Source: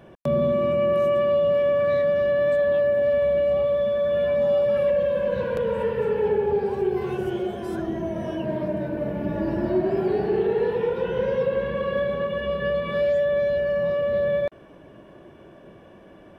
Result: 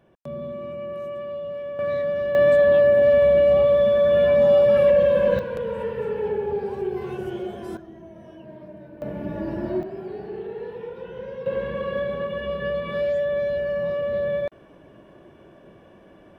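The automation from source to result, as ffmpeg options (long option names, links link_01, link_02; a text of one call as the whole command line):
ffmpeg -i in.wav -af "asetnsamples=nb_out_samples=441:pad=0,asendcmd='1.79 volume volume -3.5dB;2.35 volume volume 5dB;5.39 volume volume -3.5dB;7.77 volume volume -15dB;9.02 volume volume -3.5dB;9.83 volume volume -11dB;11.46 volume volume -2dB',volume=-11.5dB" out.wav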